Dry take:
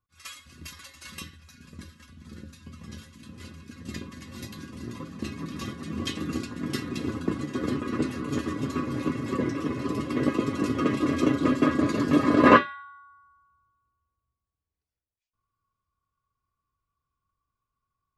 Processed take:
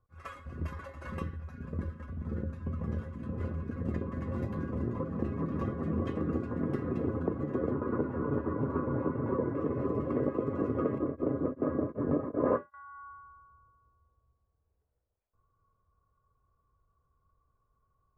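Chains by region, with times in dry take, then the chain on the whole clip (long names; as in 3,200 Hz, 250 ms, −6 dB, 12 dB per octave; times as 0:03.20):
0:07.71–0:09.55: low-pass filter 1,900 Hz 6 dB per octave + hollow resonant body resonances 950/1,400 Hz, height 10 dB, ringing for 25 ms
0:10.98–0:12.74: parametric band 5,600 Hz −13 dB 2.5 octaves + tremolo along a rectified sine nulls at 2.6 Hz
whole clip: drawn EQ curve 300 Hz 0 dB, 480 Hz +11 dB, 1,500 Hz −1 dB, 4,000 Hz −25 dB; downward compressor 3 to 1, threshold −38 dBFS; low-shelf EQ 140 Hz +10.5 dB; level +4 dB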